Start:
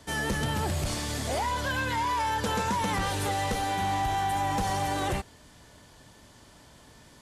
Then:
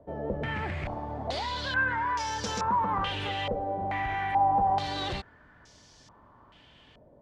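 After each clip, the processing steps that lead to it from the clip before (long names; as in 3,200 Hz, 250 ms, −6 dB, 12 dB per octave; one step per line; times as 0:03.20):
low-pass on a step sequencer 2.3 Hz 590–5,700 Hz
level −5 dB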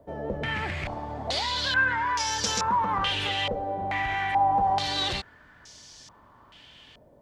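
high-shelf EQ 2,200 Hz +11.5 dB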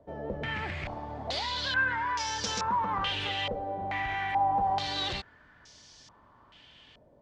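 low-pass filter 6,100 Hz 12 dB per octave
level −4 dB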